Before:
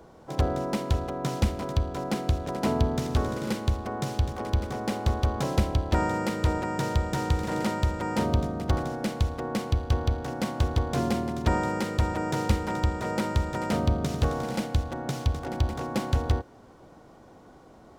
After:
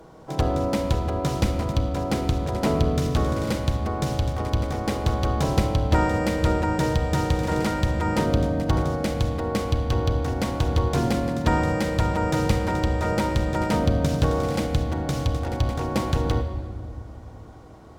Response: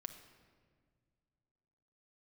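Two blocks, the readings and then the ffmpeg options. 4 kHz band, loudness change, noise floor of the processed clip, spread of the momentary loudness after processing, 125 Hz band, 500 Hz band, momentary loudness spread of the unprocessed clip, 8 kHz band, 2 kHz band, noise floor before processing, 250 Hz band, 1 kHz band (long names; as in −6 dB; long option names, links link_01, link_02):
+4.0 dB, +4.0 dB, −42 dBFS, 4 LU, +4.0 dB, +5.0 dB, 4 LU, +3.5 dB, +4.0 dB, −52 dBFS, +4.5 dB, +3.5 dB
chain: -filter_complex "[1:a]atrim=start_sample=2205,asetrate=38367,aresample=44100[link_01];[0:a][link_01]afir=irnorm=-1:irlink=0,volume=7dB"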